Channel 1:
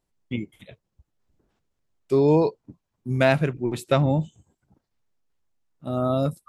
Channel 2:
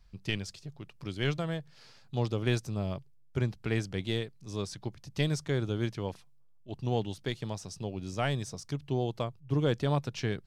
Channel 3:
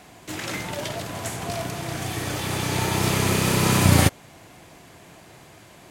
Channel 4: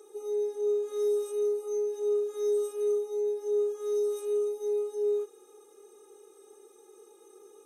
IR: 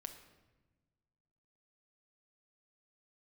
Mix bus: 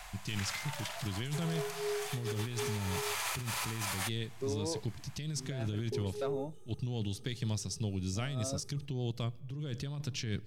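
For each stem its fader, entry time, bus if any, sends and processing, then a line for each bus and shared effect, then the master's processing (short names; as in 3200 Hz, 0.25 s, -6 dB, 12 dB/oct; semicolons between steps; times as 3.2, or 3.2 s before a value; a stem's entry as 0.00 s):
-18.5 dB, 2.30 s, no send, HPF 220 Hz; overloaded stage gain 12.5 dB
+2.5 dB, 0.00 s, send -13 dB, bell 740 Hz -14 dB 2.4 oct
-0.5 dB, 0.00 s, no send, HPF 760 Hz 24 dB/oct; auto duck -10 dB, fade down 0.55 s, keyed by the second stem
-11.5 dB, 1.20 s, muted 3.15–5.92, no send, dry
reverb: on, RT60 1.2 s, pre-delay 6 ms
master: negative-ratio compressor -34 dBFS, ratio -1; limiter -25.5 dBFS, peak gain reduction 5.5 dB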